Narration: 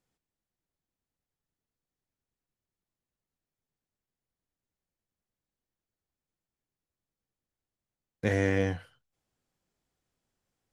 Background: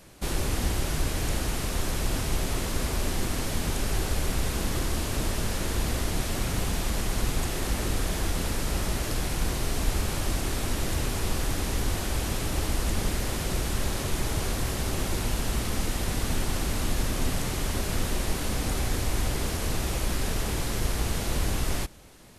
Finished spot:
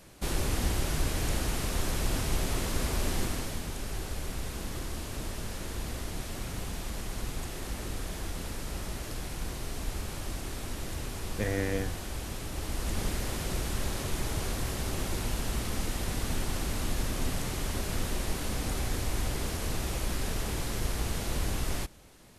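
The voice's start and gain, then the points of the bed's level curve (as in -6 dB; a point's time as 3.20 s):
3.15 s, -4.5 dB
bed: 3.21 s -2 dB
3.67 s -8.5 dB
12.53 s -8.5 dB
13.01 s -4 dB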